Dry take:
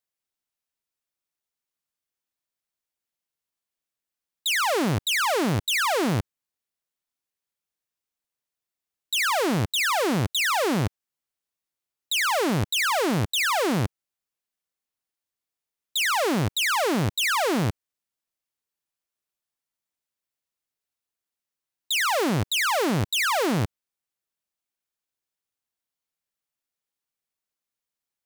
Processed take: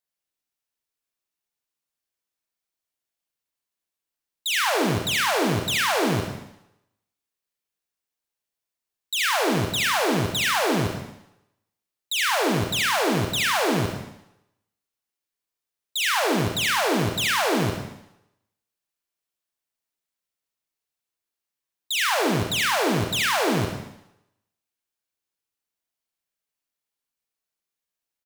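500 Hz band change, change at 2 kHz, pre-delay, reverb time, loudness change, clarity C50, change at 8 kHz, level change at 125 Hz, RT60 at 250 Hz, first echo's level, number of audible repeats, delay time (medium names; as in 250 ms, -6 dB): +1.5 dB, +1.0 dB, 33 ms, 0.80 s, +1.0 dB, 2.5 dB, +1.0 dB, -0.5 dB, 0.80 s, -8.0 dB, 1, 73 ms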